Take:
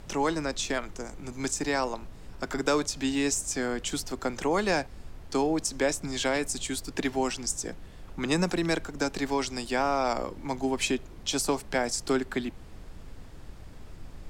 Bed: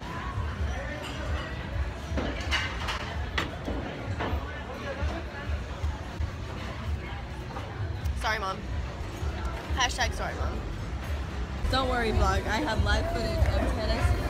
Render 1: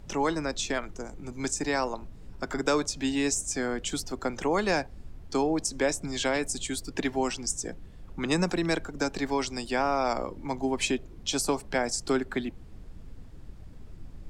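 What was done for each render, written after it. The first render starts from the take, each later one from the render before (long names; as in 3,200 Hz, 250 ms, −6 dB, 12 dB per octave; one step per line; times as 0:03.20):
broadband denoise 8 dB, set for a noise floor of −46 dBFS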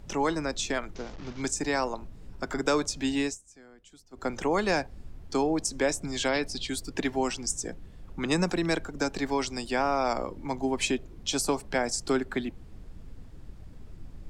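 0:00.95–0:01.42: linear delta modulator 32 kbit/s, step −40 dBFS
0:03.21–0:04.28: duck −23 dB, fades 0.17 s
0:06.28–0:06.69: high shelf with overshoot 6,000 Hz −8 dB, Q 3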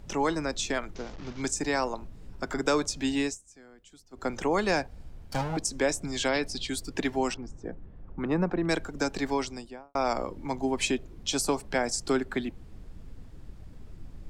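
0:04.88–0:05.57: lower of the sound and its delayed copy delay 1.3 ms
0:07.34–0:08.69: low-pass filter 1,400 Hz
0:09.29–0:09.95: fade out and dull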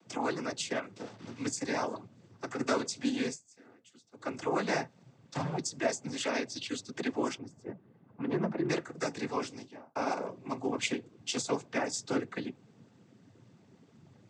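flanger 0.15 Hz, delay 3 ms, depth 8.7 ms, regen −62%
cochlear-implant simulation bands 16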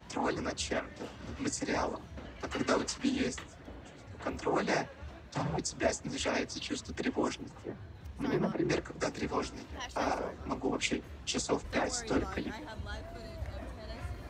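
mix in bed −16 dB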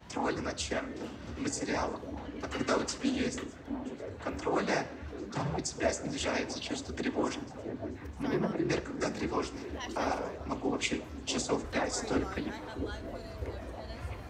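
on a send: echo through a band-pass that steps 656 ms, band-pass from 280 Hz, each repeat 0.7 octaves, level −7 dB
on the sum: dense smooth reverb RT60 0.79 s, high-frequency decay 0.75×, DRR 12.5 dB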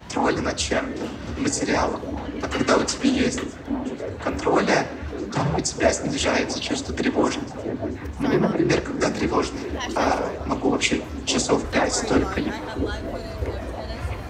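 level +11 dB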